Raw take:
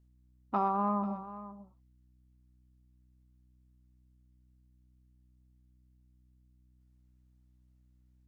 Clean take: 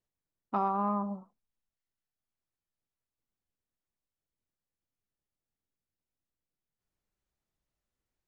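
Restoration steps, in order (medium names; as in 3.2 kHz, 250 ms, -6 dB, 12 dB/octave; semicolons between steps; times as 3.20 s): de-hum 62.2 Hz, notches 5; inverse comb 490 ms -14.5 dB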